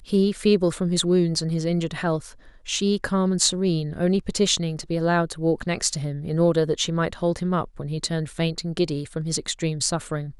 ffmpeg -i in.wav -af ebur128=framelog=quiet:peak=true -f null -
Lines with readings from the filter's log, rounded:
Integrated loudness:
  I:         -23.6 LUFS
  Threshold: -33.7 LUFS
Loudness range:
  LRA:         3.0 LU
  Threshold: -43.7 LUFS
  LRA low:   -25.8 LUFS
  LRA high:  -22.8 LUFS
True peak:
  Peak:       -3.5 dBFS